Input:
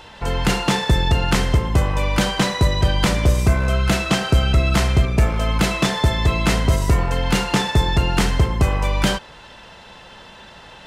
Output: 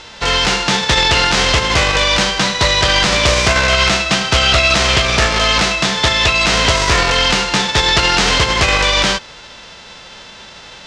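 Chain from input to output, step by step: formants flattened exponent 0.3; low-pass 6.1 kHz 24 dB/octave; peak limiter -9 dBFS, peak gain reduction 7.5 dB; loudspeaker Doppler distortion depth 0.17 ms; trim +6.5 dB

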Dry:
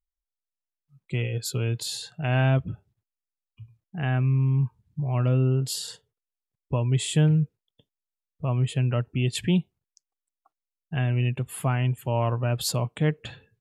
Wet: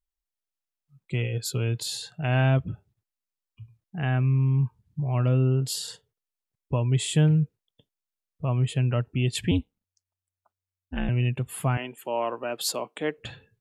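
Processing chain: 9.51–11.09 s: ring modulator 92 Hz; 11.77–13.18 s: high-pass 270 Hz 24 dB/octave

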